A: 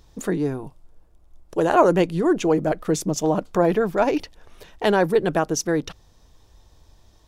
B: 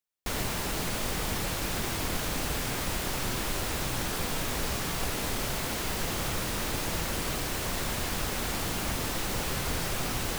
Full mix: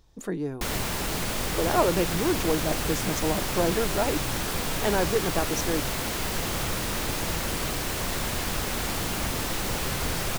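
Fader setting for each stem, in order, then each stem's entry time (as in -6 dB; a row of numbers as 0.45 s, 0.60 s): -7.0 dB, +2.5 dB; 0.00 s, 0.35 s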